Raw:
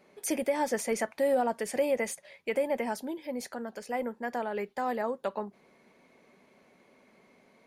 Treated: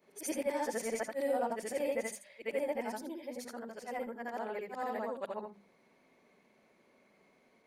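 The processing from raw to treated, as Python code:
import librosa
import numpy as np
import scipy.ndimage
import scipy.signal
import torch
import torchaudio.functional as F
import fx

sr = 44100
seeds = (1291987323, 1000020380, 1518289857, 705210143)

y = fx.frame_reverse(x, sr, frame_ms=178.0)
y = fx.hum_notches(y, sr, base_hz=50, count=5)
y = F.gain(torch.from_numpy(y), -2.5).numpy()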